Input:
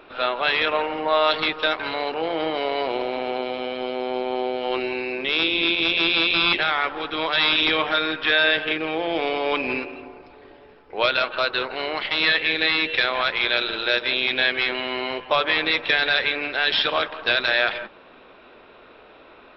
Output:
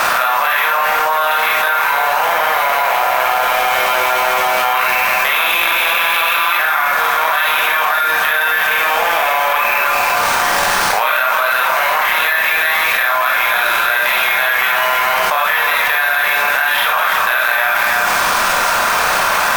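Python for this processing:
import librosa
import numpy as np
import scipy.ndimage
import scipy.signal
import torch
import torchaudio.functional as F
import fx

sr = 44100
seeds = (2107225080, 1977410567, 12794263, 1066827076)

p1 = fx.bin_compress(x, sr, power=0.6)
p2 = scipy.signal.sosfilt(scipy.signal.butter(4, 790.0, 'highpass', fs=sr, output='sos'), p1)
p3 = fx.dereverb_blind(p2, sr, rt60_s=0.79)
p4 = scipy.signal.sosfilt(scipy.signal.butter(2, 1600.0, 'lowpass', fs=sr, output='sos'), p3)
p5 = fx.rider(p4, sr, range_db=4, speed_s=2.0)
p6 = p4 + (p5 * 10.0 ** (0.0 / 20.0))
p7 = fx.quant_dither(p6, sr, seeds[0], bits=6, dither='triangular')
p8 = p7 + 10.0 ** (-10.0 / 20.0) * np.pad(p7, (int(311 * sr / 1000.0), 0))[:len(p7)]
p9 = fx.rev_schroeder(p8, sr, rt60_s=0.38, comb_ms=32, drr_db=-3.0)
p10 = np.repeat(scipy.signal.resample_poly(p9, 1, 3), 3)[:len(p9)]
p11 = fx.env_flatten(p10, sr, amount_pct=100)
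y = p11 * 10.0 ** (-4.5 / 20.0)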